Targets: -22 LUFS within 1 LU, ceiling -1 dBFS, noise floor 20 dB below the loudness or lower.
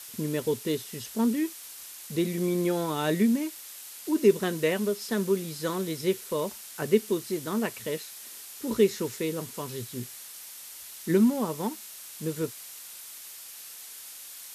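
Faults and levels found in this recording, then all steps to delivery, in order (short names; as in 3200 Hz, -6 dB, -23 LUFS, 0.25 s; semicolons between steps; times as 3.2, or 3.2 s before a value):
noise floor -44 dBFS; noise floor target -49 dBFS; loudness -28.5 LUFS; peak -9.0 dBFS; loudness target -22.0 LUFS
-> noise print and reduce 6 dB; gain +6.5 dB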